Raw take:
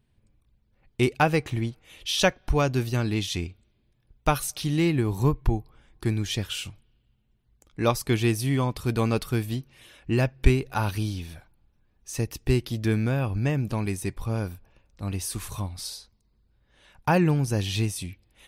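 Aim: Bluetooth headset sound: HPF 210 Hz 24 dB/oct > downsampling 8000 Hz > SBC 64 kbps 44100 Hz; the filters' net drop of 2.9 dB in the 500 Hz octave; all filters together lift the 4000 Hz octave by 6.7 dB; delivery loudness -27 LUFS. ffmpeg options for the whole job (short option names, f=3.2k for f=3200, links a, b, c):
-af "highpass=f=210:w=0.5412,highpass=f=210:w=1.3066,equalizer=f=500:t=o:g=-4,equalizer=f=4k:t=o:g=8.5,aresample=8000,aresample=44100,volume=2dB" -ar 44100 -c:a sbc -b:a 64k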